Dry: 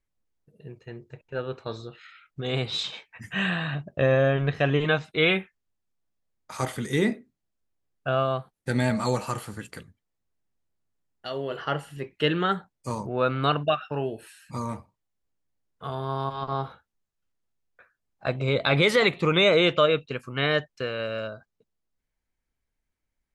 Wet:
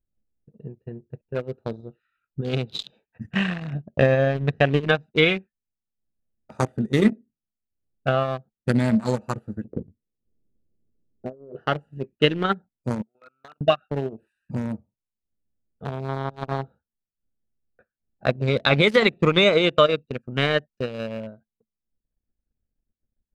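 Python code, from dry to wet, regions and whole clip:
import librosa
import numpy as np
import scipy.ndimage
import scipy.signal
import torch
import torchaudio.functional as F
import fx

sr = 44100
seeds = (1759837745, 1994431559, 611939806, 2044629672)

y = fx.chain(x, sr, fx.lowpass_res(hz=450.0, q=1.6),
    fx.over_compress(threshold_db=-38.0, ratio=-1.0), at=(9.64, 11.56))
y = fx.chain(y, sr, fx.double_bandpass(hz=1800.0, octaves=0.86),
    fx.level_steps(step_db=17), at=(13.02, 13.61))
y = fx.wiener(y, sr, points=41)
y = fx.peak_eq(y, sr, hz=220.0, db=7.5, octaves=0.22)
y = fx.transient(y, sr, attack_db=6, sustain_db=-10)
y = F.gain(torch.from_numpy(y), 1.5).numpy()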